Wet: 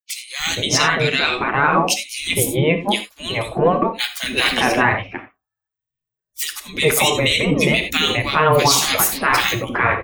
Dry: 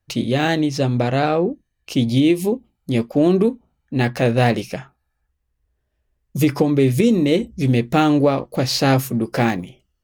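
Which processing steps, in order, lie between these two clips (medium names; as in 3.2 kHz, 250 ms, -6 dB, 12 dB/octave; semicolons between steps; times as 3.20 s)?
expander on every frequency bin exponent 1.5; tone controls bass -5 dB, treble -1 dB; three bands offset in time highs, lows, mids 310/410 ms, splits 160/1900 Hz; transient shaper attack -3 dB, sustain +1 dB; spectral gate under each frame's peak -15 dB weak; gated-style reverb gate 110 ms flat, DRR 8.5 dB; loudness maximiser +25.5 dB; trim -3.5 dB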